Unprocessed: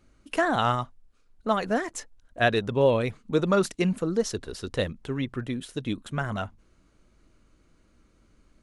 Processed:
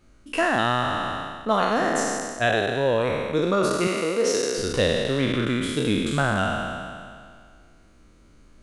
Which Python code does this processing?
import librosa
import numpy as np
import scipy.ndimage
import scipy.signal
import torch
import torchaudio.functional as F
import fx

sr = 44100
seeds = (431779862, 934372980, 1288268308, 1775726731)

y = fx.spec_trails(x, sr, decay_s=2.08)
y = fx.highpass(y, sr, hz=310.0, slope=12, at=(3.87, 4.58))
y = fx.rider(y, sr, range_db=4, speed_s=0.5)